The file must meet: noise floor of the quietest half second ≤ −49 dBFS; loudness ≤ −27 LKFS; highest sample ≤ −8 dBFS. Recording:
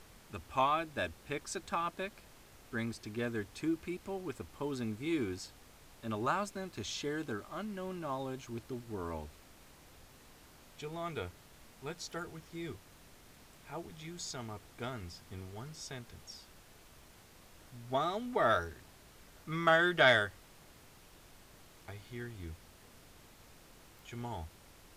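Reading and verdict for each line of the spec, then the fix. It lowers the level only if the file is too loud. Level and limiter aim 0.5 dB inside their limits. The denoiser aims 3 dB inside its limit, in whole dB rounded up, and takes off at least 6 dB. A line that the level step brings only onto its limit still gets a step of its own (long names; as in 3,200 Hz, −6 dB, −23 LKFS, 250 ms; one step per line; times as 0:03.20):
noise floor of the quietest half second −58 dBFS: in spec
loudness −36.5 LKFS: in spec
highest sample −12.5 dBFS: in spec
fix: no processing needed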